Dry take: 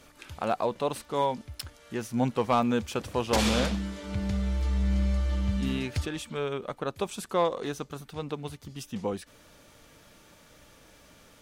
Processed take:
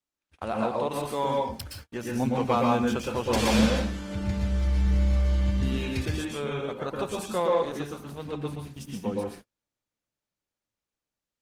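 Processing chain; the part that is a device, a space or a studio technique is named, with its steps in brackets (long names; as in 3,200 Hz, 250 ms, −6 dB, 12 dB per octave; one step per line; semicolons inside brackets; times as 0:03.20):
speakerphone in a meeting room (convolution reverb RT60 0.45 s, pre-delay 111 ms, DRR −1.5 dB; automatic gain control gain up to 3 dB; noise gate −37 dBFS, range −38 dB; level −5 dB; Opus 20 kbit/s 48,000 Hz)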